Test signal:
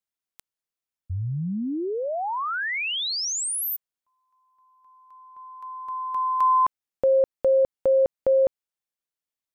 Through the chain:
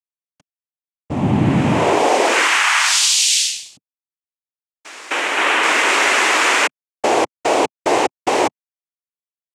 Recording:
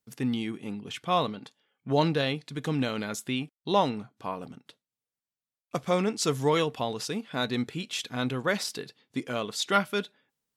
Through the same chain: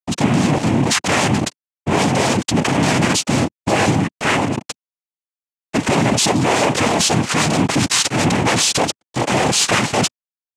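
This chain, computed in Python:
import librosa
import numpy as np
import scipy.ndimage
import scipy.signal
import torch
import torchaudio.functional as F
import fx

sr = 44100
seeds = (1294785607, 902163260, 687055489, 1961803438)

y = fx.fuzz(x, sr, gain_db=47.0, gate_db=-54.0)
y = fx.noise_vocoder(y, sr, seeds[0], bands=4)
y = y * 10.0 ** (-1.0 / 20.0)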